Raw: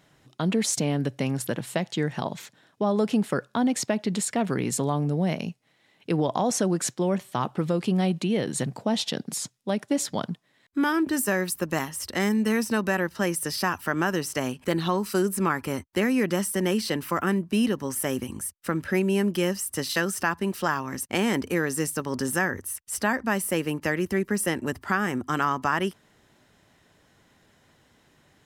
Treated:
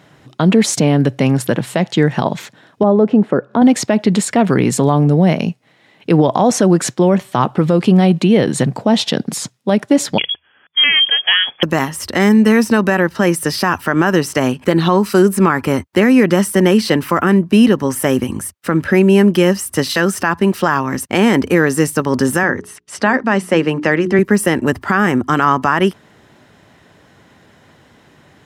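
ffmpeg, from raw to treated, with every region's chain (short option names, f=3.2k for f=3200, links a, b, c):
-filter_complex "[0:a]asettb=1/sr,asplit=3[a][b][c];[a]atrim=end=2.834[d];[b]atrim=start=2.83:end=3.62,asetpts=PTS-STARTPTS,afade=t=in:d=0.004:c=qsin,afade=t=out:st=0.786:d=0.004:c=qsin,bandpass=f=380:t=q:w=0.61,acompressor=mode=upward:threshold=-34dB:ratio=2.5:attack=3.2:release=140:knee=2.83:detection=peak[e];[c]atrim=start=3.616[f];[d][e]acrossfade=d=0.004:c1=hsin:c2=qsin[g];[g][f]acrossfade=d=0.004:c1=qsin:c2=hsin,asettb=1/sr,asplit=3[h][i][j];[h]atrim=end=10.184[k];[i]atrim=start=10.18:end=11.63,asetpts=PTS-STARTPTS,afade=t=in:d=0.004:c=qsin,afade=t=out:st=1.446:d=0.004:c=qsin,lowpass=f=3k:t=q:w=0.5098,lowpass=f=3k:t=q:w=0.6013,lowpass=f=3k:t=q:w=0.9,lowpass=f=3k:t=q:w=2.563,afreqshift=-3500,bandreject=f=79.72:t=h:w=4,bandreject=f=159.44:t=h:w=4[l];[j]atrim=start=11.626[m];[k][l]acrossfade=d=0.004:c1=hsin:c2=qsin[n];[n][m]acrossfade=d=0.004:c1=qsin:c2=hsin,asettb=1/sr,asplit=3[o][p][q];[o]atrim=end=22.434[r];[p]atrim=start=22.43:end=24.19,asetpts=PTS-STARTPTS,afade=t=in:d=0.004:c=qsin,afade=t=out:st=1.756:d=0.004:c=qsin,highpass=140,lowpass=5.9k,bandreject=f=60:t=h:w=6,bandreject=f=120:t=h:w=6,bandreject=f=180:t=h:w=6,bandreject=f=240:t=h:w=6,bandreject=f=300:t=h:w=6,bandreject=f=360:t=h:w=6,bandreject=f=420:t=h:w=6[s];[q]atrim=start=24.186[t];[r][s]acrossfade=d=0.004:c1=hsin:c2=qsin[u];[u][t]acrossfade=d=0.004:c1=qsin:c2=hsin,highpass=67,highshelf=f=4.3k:g=-9,alimiter=level_in=15dB:limit=-1dB:release=50:level=0:latency=1,volume=-1dB"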